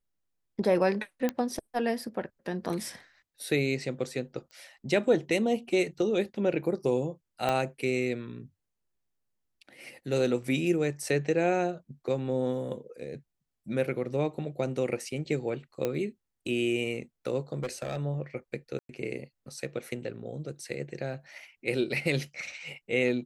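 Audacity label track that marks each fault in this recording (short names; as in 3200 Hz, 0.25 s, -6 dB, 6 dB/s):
1.290000	1.290000	pop -15 dBFS
4.510000	4.510000	pop -35 dBFS
7.490000	7.490000	pop -15 dBFS
15.850000	15.850000	pop -16 dBFS
17.540000	17.970000	clipped -28 dBFS
18.790000	18.890000	gap 0.102 s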